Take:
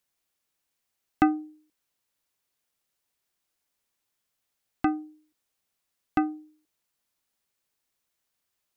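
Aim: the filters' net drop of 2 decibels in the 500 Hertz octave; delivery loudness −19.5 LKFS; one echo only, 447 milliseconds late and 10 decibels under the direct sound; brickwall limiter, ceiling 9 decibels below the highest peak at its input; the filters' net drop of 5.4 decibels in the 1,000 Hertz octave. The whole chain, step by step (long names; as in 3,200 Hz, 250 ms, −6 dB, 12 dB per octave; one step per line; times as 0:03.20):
parametric band 500 Hz −3.5 dB
parametric band 1,000 Hz −6.5 dB
brickwall limiter −20 dBFS
single-tap delay 447 ms −10 dB
level +17 dB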